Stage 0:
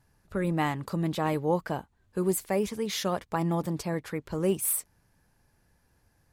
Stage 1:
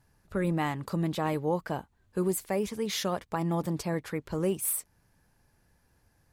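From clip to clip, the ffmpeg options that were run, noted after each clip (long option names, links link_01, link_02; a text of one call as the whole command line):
ffmpeg -i in.wav -af "alimiter=limit=-18.5dB:level=0:latency=1:release=347" out.wav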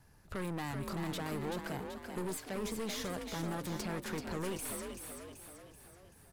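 ffmpeg -i in.wav -filter_complex "[0:a]acrossover=split=430|1200|5600[link_01][link_02][link_03][link_04];[link_01]acompressor=threshold=-38dB:ratio=4[link_05];[link_02]acompressor=threshold=-42dB:ratio=4[link_06];[link_03]acompressor=threshold=-47dB:ratio=4[link_07];[link_04]acompressor=threshold=-50dB:ratio=4[link_08];[link_05][link_06][link_07][link_08]amix=inputs=4:normalize=0,aeval=exprs='(tanh(112*val(0)+0.5)-tanh(0.5))/112':channel_layout=same,asplit=2[link_09][link_10];[link_10]asplit=6[link_11][link_12][link_13][link_14][link_15][link_16];[link_11]adelay=383,afreqshift=44,volume=-6dB[link_17];[link_12]adelay=766,afreqshift=88,volume=-11.8dB[link_18];[link_13]adelay=1149,afreqshift=132,volume=-17.7dB[link_19];[link_14]adelay=1532,afreqshift=176,volume=-23.5dB[link_20];[link_15]adelay=1915,afreqshift=220,volume=-29.4dB[link_21];[link_16]adelay=2298,afreqshift=264,volume=-35.2dB[link_22];[link_17][link_18][link_19][link_20][link_21][link_22]amix=inputs=6:normalize=0[link_23];[link_09][link_23]amix=inputs=2:normalize=0,volume=5.5dB" out.wav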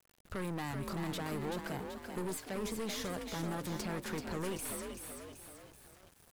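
ffmpeg -i in.wav -af "aeval=exprs='val(0)*gte(abs(val(0)),0.00168)':channel_layout=same" out.wav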